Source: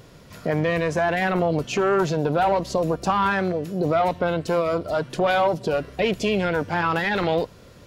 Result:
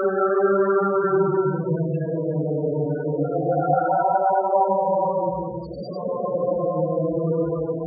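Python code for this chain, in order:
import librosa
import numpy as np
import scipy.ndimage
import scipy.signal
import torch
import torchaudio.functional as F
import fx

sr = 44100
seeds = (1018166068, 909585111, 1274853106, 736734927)

y = fx.hum_notches(x, sr, base_hz=60, count=7)
y = fx.paulstretch(y, sr, seeds[0], factor=6.8, window_s=0.25, from_s=1.83)
y = fx.spec_topn(y, sr, count=16)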